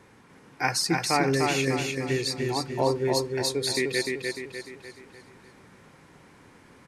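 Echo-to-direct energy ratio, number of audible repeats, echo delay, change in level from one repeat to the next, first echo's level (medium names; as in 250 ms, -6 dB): -2.5 dB, 5, 299 ms, -6.5 dB, -3.5 dB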